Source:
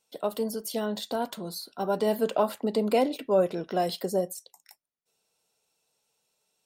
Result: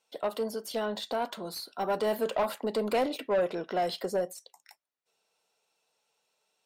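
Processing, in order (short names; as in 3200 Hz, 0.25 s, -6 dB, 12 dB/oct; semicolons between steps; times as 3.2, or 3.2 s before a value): 1.44–3.26 high shelf 9700 Hz -> 6100 Hz +8.5 dB; overdrive pedal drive 18 dB, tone 2500 Hz, clips at -11 dBFS; gain -7.5 dB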